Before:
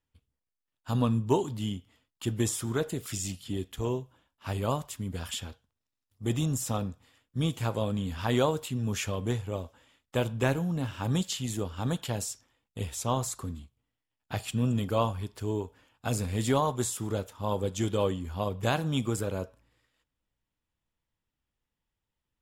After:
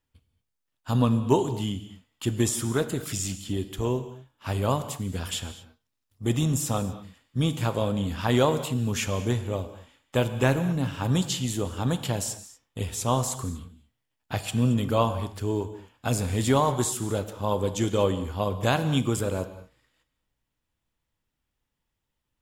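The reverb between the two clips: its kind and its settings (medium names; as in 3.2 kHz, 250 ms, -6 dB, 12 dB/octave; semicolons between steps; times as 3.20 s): gated-style reverb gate 260 ms flat, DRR 11.5 dB; trim +4 dB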